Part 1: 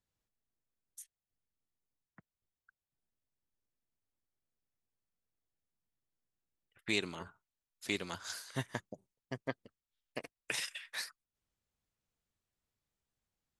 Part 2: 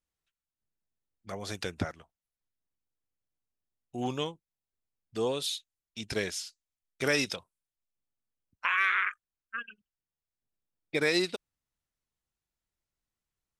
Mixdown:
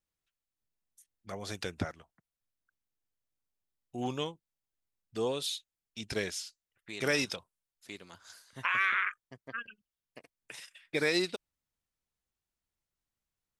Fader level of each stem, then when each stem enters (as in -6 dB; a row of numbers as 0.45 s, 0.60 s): -10.0 dB, -2.0 dB; 0.00 s, 0.00 s